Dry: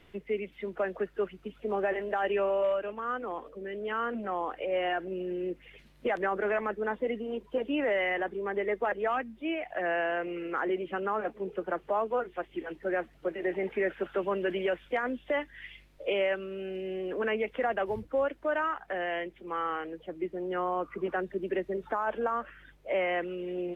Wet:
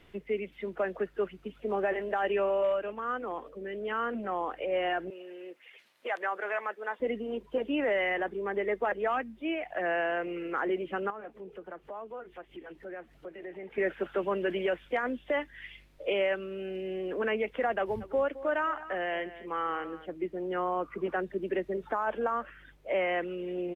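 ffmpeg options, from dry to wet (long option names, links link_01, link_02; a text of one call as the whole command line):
ffmpeg -i in.wav -filter_complex "[0:a]asettb=1/sr,asplit=3[link_01][link_02][link_03];[link_01]atrim=end=5.104[link_04];[link_02]atrim=start=5.1:end=7,asetpts=PTS-STARTPTS,afade=type=in:duration=0.004:curve=qsin,afade=type=out:start_time=1.896:duration=0.004:curve=qsin,highpass=690[link_05];[link_03]atrim=start=6.996[link_06];[link_04][link_05]acrossfade=duration=0.004:curve1=hsin:curve2=qsin[link_07];[link_07][link_06]acrossfade=duration=0.004:curve1=qsin:curve2=hsin,asettb=1/sr,asplit=3[link_08][link_09][link_10];[link_08]atrim=end=11.104[link_11];[link_09]atrim=start=11.1:end=13.78,asetpts=PTS-STARTPTS,afade=type=in:duration=0.004:curve=qsin,afade=type=out:start_time=2.676:duration=0.004:curve=qsin,acompressor=threshold=-48dB:ratio=2:attack=3.2:release=140:knee=1:detection=peak[link_12];[link_10]atrim=start=13.776[link_13];[link_11][link_12]acrossfade=duration=0.004:curve1=hsin:curve2=qsin[link_14];[link_14][link_13]acrossfade=duration=0.004:curve1=qsin:curve2=hsin,asplit=3[link_15][link_16][link_17];[link_15]afade=type=out:start_time=18:duration=0.02[link_18];[link_16]aecho=1:1:216:0.178,afade=type=in:start_time=18:duration=0.02,afade=type=out:start_time=20.1:duration=0.02[link_19];[link_17]afade=type=in:start_time=20.1:duration=0.02[link_20];[link_18][link_19][link_20]amix=inputs=3:normalize=0" out.wav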